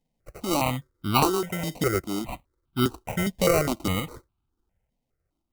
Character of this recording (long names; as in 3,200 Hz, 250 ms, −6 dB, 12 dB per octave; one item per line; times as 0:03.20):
aliases and images of a low sample rate 1,700 Hz, jitter 0%
sample-and-hold tremolo
notches that jump at a steady rate 4.9 Hz 360–1,900 Hz